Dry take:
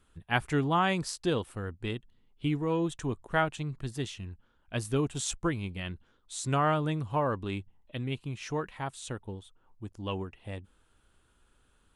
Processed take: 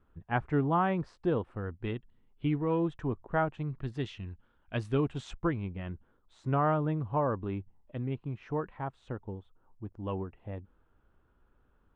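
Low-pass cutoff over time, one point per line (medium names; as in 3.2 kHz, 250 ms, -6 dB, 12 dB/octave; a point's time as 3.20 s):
1.41 s 1.3 kHz
1.85 s 2.1 kHz
2.69 s 2.1 kHz
3.43 s 1.2 kHz
4.01 s 2.9 kHz
4.89 s 2.9 kHz
5.87 s 1.3 kHz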